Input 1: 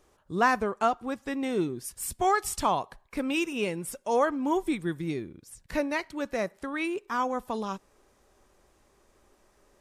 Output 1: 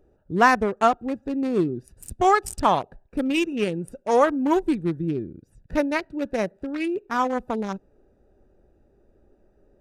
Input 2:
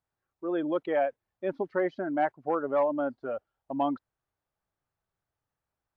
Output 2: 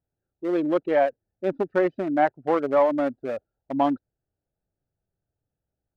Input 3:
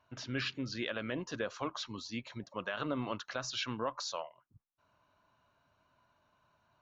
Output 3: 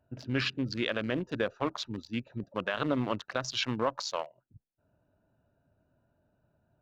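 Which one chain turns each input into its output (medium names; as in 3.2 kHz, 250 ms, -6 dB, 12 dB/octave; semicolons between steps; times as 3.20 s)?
local Wiener filter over 41 samples; trim +7 dB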